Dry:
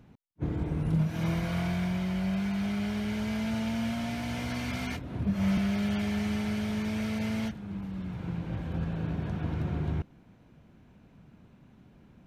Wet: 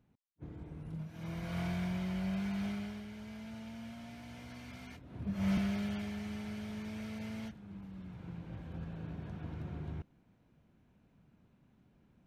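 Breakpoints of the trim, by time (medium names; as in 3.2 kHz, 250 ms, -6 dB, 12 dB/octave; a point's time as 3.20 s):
1.13 s -16 dB
1.61 s -6 dB
2.67 s -6 dB
3.09 s -15.5 dB
4.97 s -15.5 dB
5.53 s -4 dB
6.17 s -11 dB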